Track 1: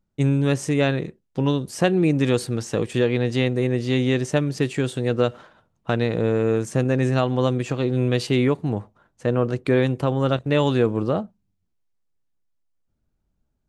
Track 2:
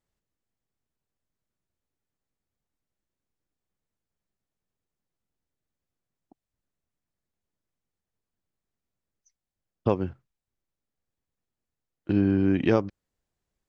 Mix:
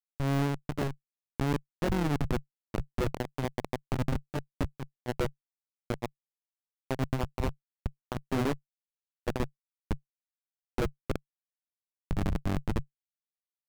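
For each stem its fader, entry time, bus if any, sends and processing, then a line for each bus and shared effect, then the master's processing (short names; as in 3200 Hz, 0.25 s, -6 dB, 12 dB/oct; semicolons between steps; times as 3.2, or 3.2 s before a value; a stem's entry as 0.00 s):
0.0 dB, 0.00 s, no send, auto duck -23 dB, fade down 0.25 s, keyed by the second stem
-1.0 dB, 0.00 s, no send, dry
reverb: off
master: Schmitt trigger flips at -17.5 dBFS; high shelf 3500 Hz -8 dB; AM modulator 140 Hz, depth 70%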